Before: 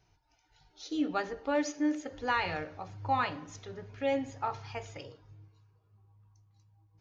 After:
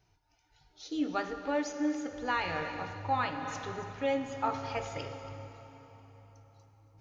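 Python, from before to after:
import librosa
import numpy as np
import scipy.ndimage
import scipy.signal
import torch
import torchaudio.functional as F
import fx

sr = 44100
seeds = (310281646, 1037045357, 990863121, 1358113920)

y = x + 10.0 ** (-16.0 / 20.0) * np.pad(x, (int(279 * sr / 1000.0), 0))[:len(x)]
y = fx.rev_plate(y, sr, seeds[0], rt60_s=4.1, hf_ratio=0.8, predelay_ms=0, drr_db=8.0)
y = fx.rider(y, sr, range_db=4, speed_s=0.5)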